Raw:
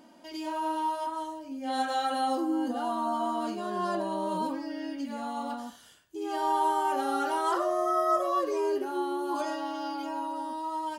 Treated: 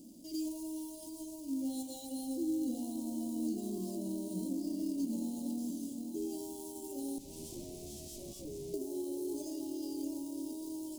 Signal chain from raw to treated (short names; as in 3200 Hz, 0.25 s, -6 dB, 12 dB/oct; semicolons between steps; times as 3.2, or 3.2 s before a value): notches 50/100/150/200/250 Hz; diffused feedback echo 0.756 s, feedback 40%, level -10.5 dB; on a send at -15 dB: reverb RT60 1.1 s, pre-delay 0.146 s; 7.18–8.74 on the sum: tube stage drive 40 dB, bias 0.7; in parallel at -3 dB: companded quantiser 4-bit; on the sum: compressor 3:1, threshold -30 dBFS, peak gain reduction 9.5 dB; Chebyshev band-stop 250–7300 Hz, order 2; gain +1 dB